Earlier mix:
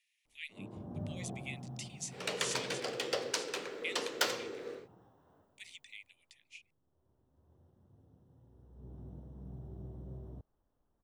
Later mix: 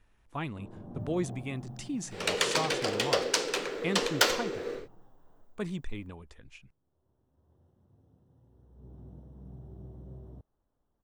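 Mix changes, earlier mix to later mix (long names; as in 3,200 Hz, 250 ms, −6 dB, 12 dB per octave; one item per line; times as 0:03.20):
speech: remove Butterworth high-pass 2,000 Hz 72 dB per octave
second sound +7.5 dB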